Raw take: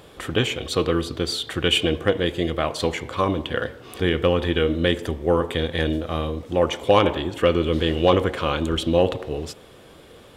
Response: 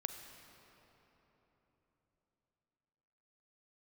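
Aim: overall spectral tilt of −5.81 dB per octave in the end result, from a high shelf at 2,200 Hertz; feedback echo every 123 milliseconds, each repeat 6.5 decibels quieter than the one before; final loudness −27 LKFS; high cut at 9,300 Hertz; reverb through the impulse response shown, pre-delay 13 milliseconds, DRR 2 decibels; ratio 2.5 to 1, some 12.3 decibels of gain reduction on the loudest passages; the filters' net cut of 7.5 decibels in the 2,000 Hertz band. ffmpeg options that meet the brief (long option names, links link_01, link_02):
-filter_complex "[0:a]lowpass=9300,equalizer=frequency=2000:width_type=o:gain=-6.5,highshelf=frequency=2200:gain=-6,acompressor=threshold=-32dB:ratio=2.5,aecho=1:1:123|246|369|492|615|738:0.473|0.222|0.105|0.0491|0.0231|0.0109,asplit=2[link_01][link_02];[1:a]atrim=start_sample=2205,adelay=13[link_03];[link_02][link_03]afir=irnorm=-1:irlink=0,volume=-1.5dB[link_04];[link_01][link_04]amix=inputs=2:normalize=0,volume=2.5dB"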